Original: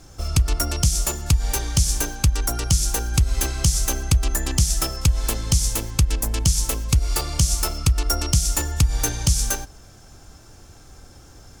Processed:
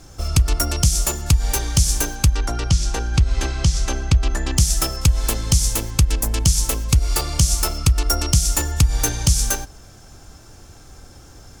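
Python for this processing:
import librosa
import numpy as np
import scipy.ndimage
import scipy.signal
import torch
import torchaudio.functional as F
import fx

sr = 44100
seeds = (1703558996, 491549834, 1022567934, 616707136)

y = fx.lowpass(x, sr, hz=4800.0, slope=12, at=(2.35, 4.57))
y = F.gain(torch.from_numpy(y), 2.5).numpy()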